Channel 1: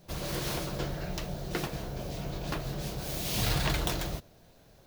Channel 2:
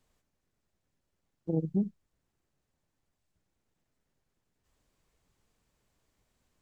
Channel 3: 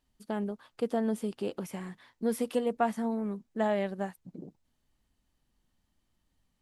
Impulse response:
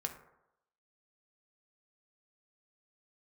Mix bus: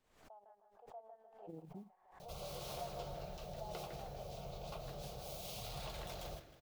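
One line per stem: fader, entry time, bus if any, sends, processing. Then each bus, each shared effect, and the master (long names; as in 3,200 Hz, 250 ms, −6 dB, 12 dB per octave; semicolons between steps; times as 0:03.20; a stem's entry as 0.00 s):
−5.0 dB, 2.20 s, bus A, no send, echo send −18 dB, notch filter 980 Hz, Q 7.6
−13.0 dB, 0.00 s, no bus, no send, no echo send, downward compressor 4 to 1, threshold −32 dBFS, peak gain reduction 7.5 dB; noise that follows the level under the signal 30 dB
−14.5 dB, 0.00 s, bus A, no send, echo send −7.5 dB, four-pole ladder band-pass 820 Hz, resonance 70%
bus A: 0.0 dB, phaser with its sweep stopped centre 720 Hz, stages 4; brickwall limiter −32.5 dBFS, peak gain reduction 11.5 dB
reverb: not used
echo: repeating echo 156 ms, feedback 42%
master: bass and treble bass −7 dB, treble −7 dB; background raised ahead of every attack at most 86 dB per second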